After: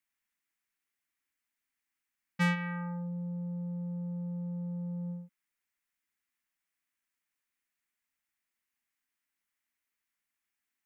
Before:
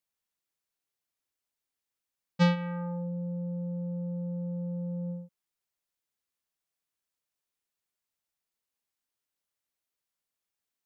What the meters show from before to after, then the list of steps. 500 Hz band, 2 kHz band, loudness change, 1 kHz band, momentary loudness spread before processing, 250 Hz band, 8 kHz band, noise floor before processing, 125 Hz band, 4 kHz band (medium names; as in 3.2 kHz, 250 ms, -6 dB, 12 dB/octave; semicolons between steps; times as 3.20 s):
-10.0 dB, +3.5 dB, -3.0 dB, -2.5 dB, 11 LU, -3.5 dB, no reading, under -85 dBFS, -3.5 dB, -4.5 dB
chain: saturation -22.5 dBFS, distortion -15 dB; graphic EQ 125/250/500/2000/4000 Hz -8/+6/-10/+10/-5 dB